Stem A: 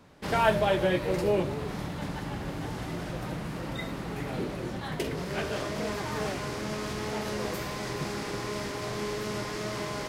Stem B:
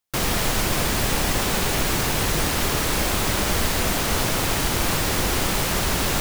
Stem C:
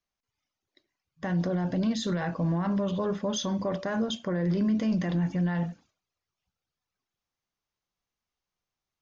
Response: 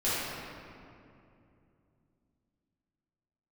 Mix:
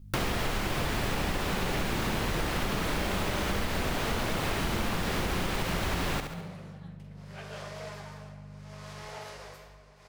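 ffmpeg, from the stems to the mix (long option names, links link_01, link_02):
-filter_complex "[0:a]highpass=frequency=500:width=0.5412,highpass=frequency=500:width=1.3066,equalizer=frequency=13000:width=1.5:gain=-3.5,tremolo=f=0.7:d=0.91,adelay=2000,volume=-8dB,asplit=2[link_01][link_02];[link_02]volume=-18dB[link_03];[1:a]acrossover=split=4000[link_04][link_05];[link_05]acompressor=threshold=-36dB:ratio=4:attack=1:release=60[link_06];[link_04][link_06]amix=inputs=2:normalize=0,volume=2.5dB,asplit=2[link_07][link_08];[link_08]volume=-9dB[link_09];[2:a]aeval=exprs='val(0)+0.00251*(sin(2*PI*50*n/s)+sin(2*PI*2*50*n/s)/2+sin(2*PI*3*50*n/s)/3+sin(2*PI*4*50*n/s)/4+sin(2*PI*5*50*n/s)/5)':channel_layout=same,lowshelf=frequency=400:gain=8.5,alimiter=level_in=3.5dB:limit=-24dB:level=0:latency=1,volume=-3.5dB,volume=-7.5dB,asplit=2[link_10][link_11];[link_11]volume=-4dB[link_12];[3:a]atrim=start_sample=2205[link_13];[link_03][link_12]amix=inputs=2:normalize=0[link_14];[link_14][link_13]afir=irnorm=-1:irlink=0[link_15];[link_09]aecho=0:1:69|138|207|276|345:1|0.36|0.13|0.0467|0.0168[link_16];[link_01][link_07][link_10][link_15][link_16]amix=inputs=5:normalize=0,acompressor=threshold=-27dB:ratio=6"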